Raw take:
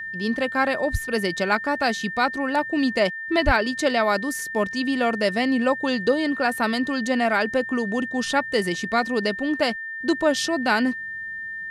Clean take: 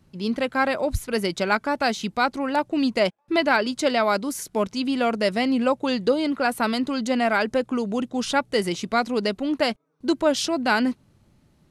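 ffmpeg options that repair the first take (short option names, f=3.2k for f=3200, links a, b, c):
-filter_complex "[0:a]bandreject=f=1.8k:w=30,asplit=3[a][b][c];[a]afade=t=out:st=3.45:d=0.02[d];[b]highpass=f=140:w=0.5412,highpass=f=140:w=1.3066,afade=t=in:st=3.45:d=0.02,afade=t=out:st=3.57:d=0.02[e];[c]afade=t=in:st=3.57:d=0.02[f];[d][e][f]amix=inputs=3:normalize=0"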